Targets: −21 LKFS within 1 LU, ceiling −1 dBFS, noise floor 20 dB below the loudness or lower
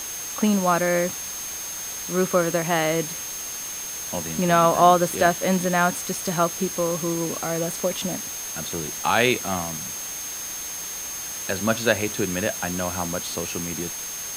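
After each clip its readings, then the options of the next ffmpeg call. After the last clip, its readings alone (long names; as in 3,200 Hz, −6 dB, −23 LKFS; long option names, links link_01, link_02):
interfering tone 6,400 Hz; level of the tone −32 dBFS; background noise floor −33 dBFS; target noise floor −44 dBFS; integrated loudness −23.5 LKFS; sample peak −2.5 dBFS; target loudness −21.0 LKFS
→ -af "bandreject=frequency=6400:width=30"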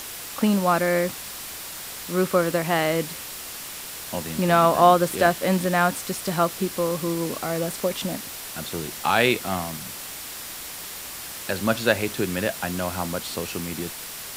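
interfering tone none found; background noise floor −36 dBFS; target noise floor −45 dBFS
→ -af "afftdn=noise_reduction=9:noise_floor=-36"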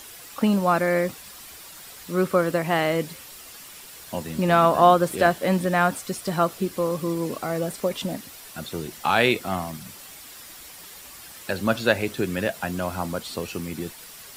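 background noise floor −44 dBFS; integrated loudness −24.0 LKFS; sample peak −3.0 dBFS; target loudness −21.0 LKFS
→ -af "volume=3dB,alimiter=limit=-1dB:level=0:latency=1"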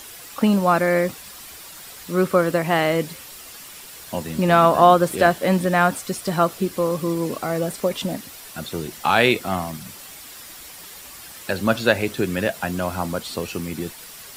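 integrated loudness −21.0 LKFS; sample peak −1.0 dBFS; background noise floor −41 dBFS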